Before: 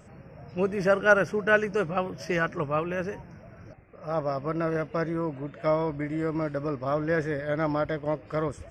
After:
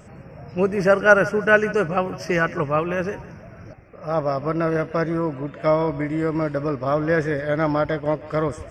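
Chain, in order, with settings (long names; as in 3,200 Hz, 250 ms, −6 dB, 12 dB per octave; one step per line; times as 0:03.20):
0:00.40–0:02.80: parametric band 3,500 Hz −11 dB 0.24 octaves
feedback echo with a high-pass in the loop 156 ms, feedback 41%, level −16 dB
level +6 dB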